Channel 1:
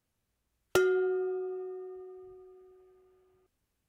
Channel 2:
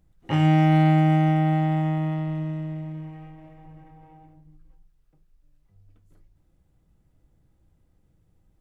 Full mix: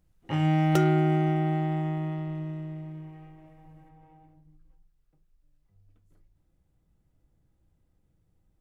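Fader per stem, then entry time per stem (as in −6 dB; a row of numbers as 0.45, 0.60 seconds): −1.5, −5.5 decibels; 0.00, 0.00 seconds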